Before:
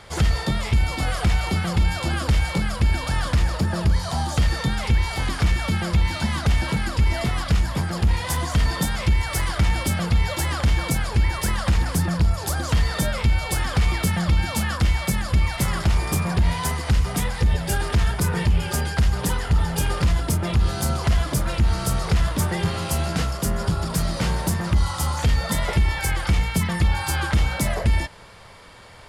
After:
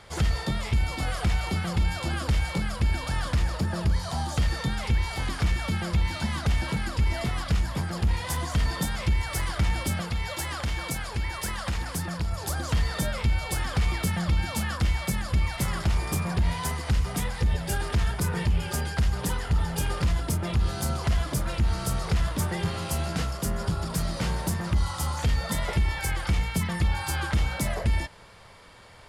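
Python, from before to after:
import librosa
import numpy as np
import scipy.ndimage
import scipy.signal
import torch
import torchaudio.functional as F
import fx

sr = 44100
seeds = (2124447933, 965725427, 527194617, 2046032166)

y = fx.low_shelf(x, sr, hz=400.0, db=-6.0, at=(10.01, 12.32))
y = F.gain(torch.from_numpy(y), -5.0).numpy()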